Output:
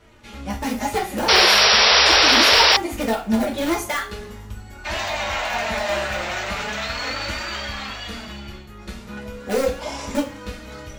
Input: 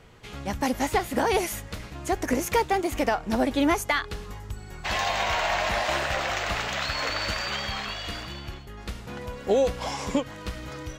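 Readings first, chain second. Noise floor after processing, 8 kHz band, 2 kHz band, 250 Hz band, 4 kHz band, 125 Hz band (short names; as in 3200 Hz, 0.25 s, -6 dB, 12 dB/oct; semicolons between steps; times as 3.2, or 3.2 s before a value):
-40 dBFS, +9.5 dB, +9.0 dB, +3.0 dB, +15.0 dB, +1.0 dB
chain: in parallel at -5 dB: wrapped overs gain 15 dB; on the sum: flange 0.4 Hz, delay 3 ms, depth 2.7 ms, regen +33%; two-slope reverb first 0.32 s, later 1.9 s, from -26 dB, DRR -3 dB; painted sound noise, 1.28–2.77, 390–5800 Hz -11 dBFS; gain -3 dB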